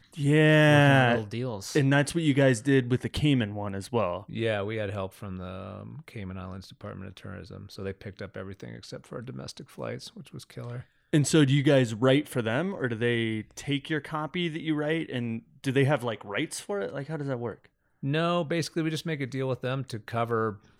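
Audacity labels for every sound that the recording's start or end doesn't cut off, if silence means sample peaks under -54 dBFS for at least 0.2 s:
11.130000	17.670000	sound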